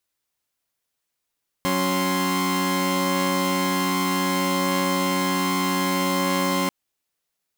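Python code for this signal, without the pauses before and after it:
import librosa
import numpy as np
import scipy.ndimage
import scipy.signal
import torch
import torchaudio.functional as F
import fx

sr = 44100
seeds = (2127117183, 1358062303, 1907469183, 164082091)

y = fx.chord(sr, length_s=5.04, notes=(54, 61, 84), wave='saw', level_db=-22.5)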